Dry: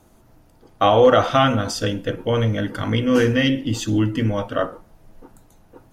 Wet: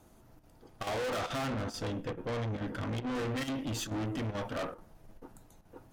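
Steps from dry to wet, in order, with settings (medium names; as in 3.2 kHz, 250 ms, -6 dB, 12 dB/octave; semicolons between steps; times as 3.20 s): 1.38–3.37 s: treble shelf 2.8 kHz -9 dB; valve stage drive 29 dB, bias 0.5; square tremolo 2.3 Hz, depth 60%, duty 90%; trim -3.5 dB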